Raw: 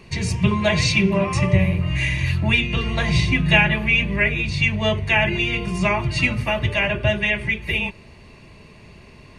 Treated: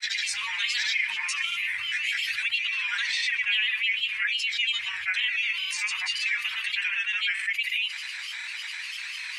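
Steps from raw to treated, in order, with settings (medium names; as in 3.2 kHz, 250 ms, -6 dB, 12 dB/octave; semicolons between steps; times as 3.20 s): inverse Chebyshev high-pass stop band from 650 Hz, stop band 50 dB; granulator, pitch spread up and down by 3 st; level flattener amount 70%; trim -8 dB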